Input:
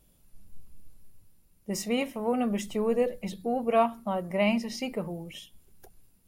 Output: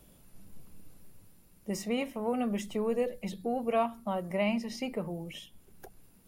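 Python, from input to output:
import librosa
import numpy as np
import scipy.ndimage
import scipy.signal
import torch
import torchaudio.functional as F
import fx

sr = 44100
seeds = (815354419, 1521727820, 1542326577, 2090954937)

y = fx.band_squash(x, sr, depth_pct=40)
y = F.gain(torch.from_numpy(y), -3.5).numpy()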